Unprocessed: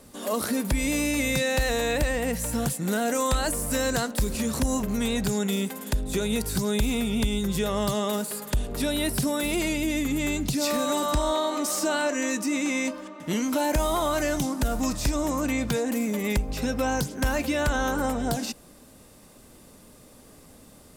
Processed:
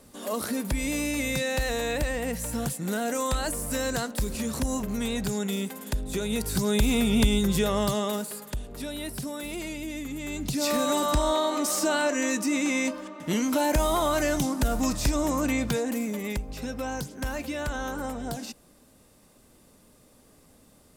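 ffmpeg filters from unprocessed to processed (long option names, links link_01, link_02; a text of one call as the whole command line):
ffmpeg -i in.wav -af "volume=13dB,afade=type=in:start_time=6.25:duration=0.96:silence=0.446684,afade=type=out:start_time=7.21:duration=1.4:silence=0.237137,afade=type=in:start_time=10.25:duration=0.5:silence=0.354813,afade=type=out:start_time=15.49:duration=0.92:silence=0.446684" out.wav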